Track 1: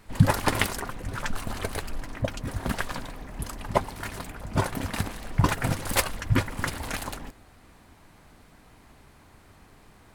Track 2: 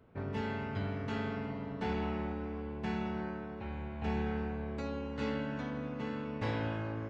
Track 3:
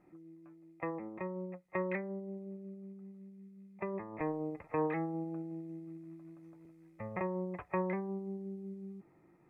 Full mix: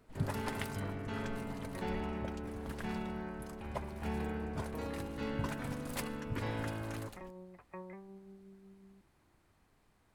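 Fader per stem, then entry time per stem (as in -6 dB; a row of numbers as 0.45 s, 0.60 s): -17.0 dB, -3.5 dB, -13.5 dB; 0.00 s, 0.00 s, 0.00 s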